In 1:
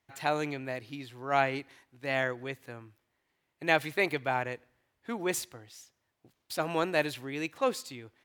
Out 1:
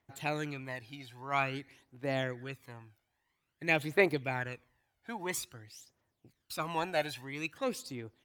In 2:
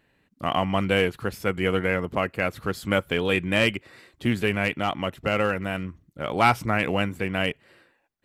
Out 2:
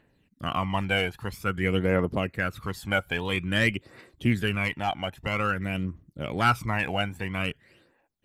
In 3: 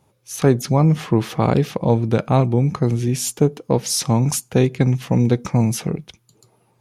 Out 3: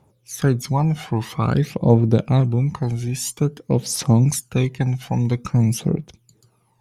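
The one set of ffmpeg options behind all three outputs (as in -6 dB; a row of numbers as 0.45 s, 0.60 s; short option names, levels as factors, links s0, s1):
-af "aphaser=in_gain=1:out_gain=1:delay=1.4:decay=0.62:speed=0.5:type=triangular,volume=0.596"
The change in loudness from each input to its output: -3.0 LU, -2.5 LU, -1.5 LU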